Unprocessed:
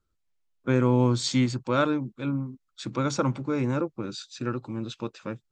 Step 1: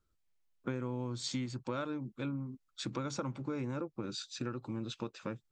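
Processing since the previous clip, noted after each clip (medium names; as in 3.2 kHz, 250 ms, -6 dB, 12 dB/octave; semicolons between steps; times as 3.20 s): compression 6:1, threshold -33 dBFS, peak gain reduction 16 dB; trim -1.5 dB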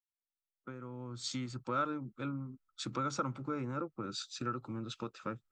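fade-in on the opening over 1.54 s; peaking EQ 1.3 kHz +12.5 dB 0.22 oct; three bands expanded up and down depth 40%; trim -1 dB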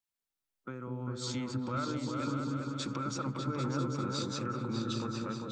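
peak limiter -32.5 dBFS, peak gain reduction 9.5 dB; delay with an opening low-pass 199 ms, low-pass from 400 Hz, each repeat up 2 oct, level 0 dB; trim +4 dB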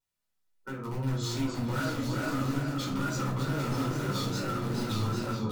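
wow and flutter 120 cents; in parallel at -7 dB: integer overflow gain 30.5 dB; on the sum: simulated room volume 390 m³, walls furnished, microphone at 4.7 m; trim -6.5 dB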